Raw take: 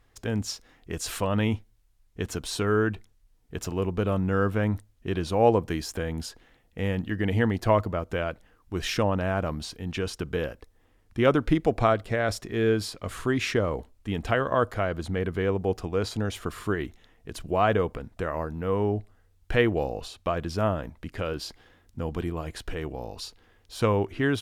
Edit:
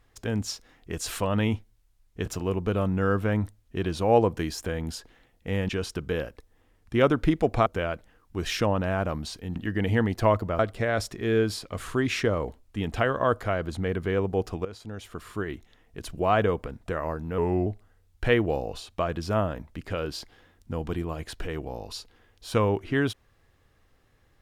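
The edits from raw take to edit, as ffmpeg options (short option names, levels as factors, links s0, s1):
-filter_complex "[0:a]asplit=9[s0][s1][s2][s3][s4][s5][s6][s7][s8];[s0]atrim=end=2.262[s9];[s1]atrim=start=3.568:end=7.002[s10];[s2]atrim=start=9.928:end=11.902[s11];[s3]atrim=start=8.028:end=9.932[s12];[s4]atrim=start=6.998:end=8.032[s13];[s5]atrim=start=11.898:end=15.96,asetpts=PTS-STARTPTS,afade=t=out:st=4.058:d=0.004:c=hsin:silence=0.16788[s14];[s6]atrim=start=15.96:end=18.694,asetpts=PTS-STARTPTS,afade=t=in:d=1.35:silence=0.16788[s15];[s7]atrim=start=18.69:end=18.94,asetpts=PTS-STARTPTS,asetrate=38808,aresample=44100,atrim=end_sample=12528,asetpts=PTS-STARTPTS[s16];[s8]atrim=start=18.936[s17];[s9][s10]acrossfade=d=0.004:c1=hsin:c2=hsin[s18];[s18][s11]acrossfade=d=0.004:c1=hsin:c2=hsin[s19];[s19][s12]acrossfade=d=0.004:c1=hsin:c2=hsin[s20];[s20][s13]acrossfade=d=0.004:c1=hsin:c2=hsin[s21];[s14][s15]concat=n=2:v=0:a=1[s22];[s21][s22]acrossfade=d=0.004:c1=hsin:c2=hsin[s23];[s23][s16]acrossfade=d=0.004:c1=hsin:c2=hsin[s24];[s24][s17]acrossfade=d=0.004:c1=hsin:c2=hsin"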